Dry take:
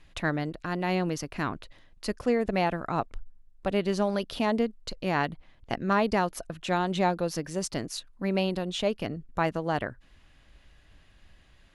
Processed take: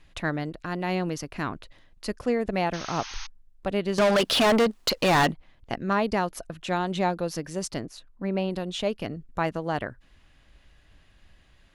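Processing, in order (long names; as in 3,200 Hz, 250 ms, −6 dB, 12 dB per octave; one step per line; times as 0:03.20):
0:02.73–0:03.27: sound drawn into the spectrogram noise 760–6,600 Hz −40 dBFS
0:03.98–0:05.32: mid-hump overdrive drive 29 dB, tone 7,400 Hz, clips at −13 dBFS
0:07.78–0:08.50: high-shelf EQ 2,000 Hz → 3,200 Hz −11.5 dB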